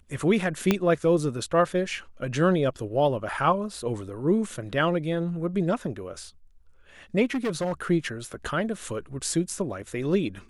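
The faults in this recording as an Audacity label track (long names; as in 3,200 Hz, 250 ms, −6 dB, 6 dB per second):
0.710000	0.710000	click −7 dBFS
7.310000	7.730000	clipping −23 dBFS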